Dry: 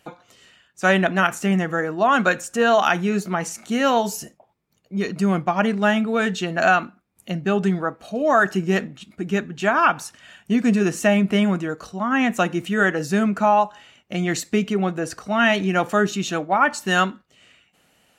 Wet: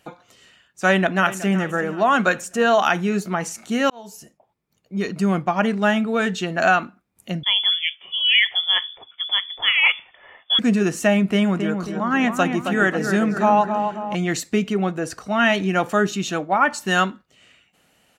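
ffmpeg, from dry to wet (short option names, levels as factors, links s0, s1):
-filter_complex "[0:a]asplit=2[s0][s1];[s1]afade=t=in:st=0.89:d=0.01,afade=t=out:st=1.56:d=0.01,aecho=0:1:370|740|1110|1480:0.188365|0.0847642|0.0381439|0.0171648[s2];[s0][s2]amix=inputs=2:normalize=0,asettb=1/sr,asplit=3[s3][s4][s5];[s3]atrim=end=7.434[s6];[s4]atrim=start=7.43:end=10.59,asetpts=PTS-STARTPTS,afade=t=in:d=0.004:c=qsin,afade=t=out:st=3.156:d=0.004:c=qsin,lowpass=f=3100:t=q:w=0.5098,lowpass=f=3100:t=q:w=0.6013,lowpass=f=3100:t=q:w=0.9,lowpass=f=3100:t=q:w=2.563,afreqshift=-3600[s7];[s5]atrim=start=10.586[s8];[s6][s7]acrossfade=d=0.004:c1=hsin:c2=qsin[s9];[s9][s8]acrossfade=d=0.004:c1=qsin:c2=hsin,asettb=1/sr,asplit=3[s10][s11][s12];[s10]atrim=end=11.284[s13];[s11]atrim=start=11.28:end=14.15,asetpts=PTS-STARTPTS,afade=t=in:d=0.004:c=qsin,afade=t=out:st=2.866:d=0.004:c=qsin,asplit=2[s14][s15];[s15]adelay=269,lowpass=f=2100:p=1,volume=0.501,asplit=2[s16][s17];[s17]adelay=269,lowpass=f=2100:p=1,volume=0.51,asplit=2[s18][s19];[s19]adelay=269,lowpass=f=2100:p=1,volume=0.51,asplit=2[s20][s21];[s21]adelay=269,lowpass=f=2100:p=1,volume=0.51,asplit=2[s22][s23];[s23]adelay=269,lowpass=f=2100:p=1,volume=0.51,asplit=2[s24][s25];[s25]adelay=269,lowpass=f=2100:p=1,volume=0.51[s26];[s14][s16][s18][s20][s22][s24][s26]amix=inputs=7:normalize=0,atrim=end_sample=126567[s27];[s12]atrim=start=14.146[s28];[s13][s27]acrossfade=d=0.004:c1=hsin:c2=qsin[s29];[s29][s28]acrossfade=d=0.004:c1=qsin:c2=hsin,asplit=2[s30][s31];[s30]atrim=end=3.9,asetpts=PTS-STARTPTS,afade=t=out:st=3.896:d=0.004:c=hsin[s32];[s31]atrim=start=3.9,asetpts=PTS-STARTPTS,afade=t=in:d=1.32:c=qsin[s33];[s32][s33]concat=n=2:v=0:a=1"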